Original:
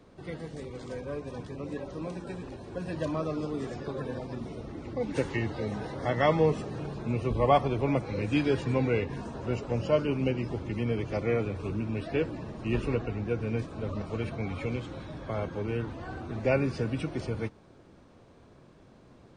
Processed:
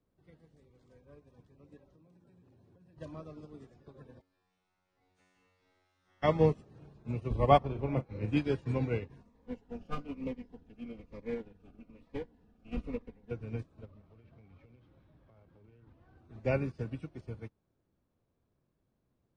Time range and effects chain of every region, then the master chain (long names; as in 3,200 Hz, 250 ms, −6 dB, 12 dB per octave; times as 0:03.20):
0:01.95–0:02.98: high-pass filter 95 Hz 24 dB per octave + low-shelf EQ 240 Hz +8 dB + downward compressor 12 to 1, threshold −35 dBFS
0:04.20–0:06.22: ceiling on every frequency bin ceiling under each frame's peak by 24 dB + tuned comb filter 92 Hz, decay 1.2 s, mix 100%
0:07.58–0:08.37: high-shelf EQ 4,600 Hz −11 dB + double-tracking delay 38 ms −6.5 dB
0:09.23–0:13.31: lower of the sound and its delayed copy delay 4.1 ms + high-shelf EQ 5,800 Hz −9 dB + phaser whose notches keep moving one way falling 1.1 Hz
0:13.85–0:16.18: variable-slope delta modulation 32 kbit/s + low-pass filter 3,200 Hz + downward compressor 16 to 1, threshold −33 dBFS
whole clip: low-shelf EQ 180 Hz +8 dB; expander for the loud parts 2.5 to 1, over −35 dBFS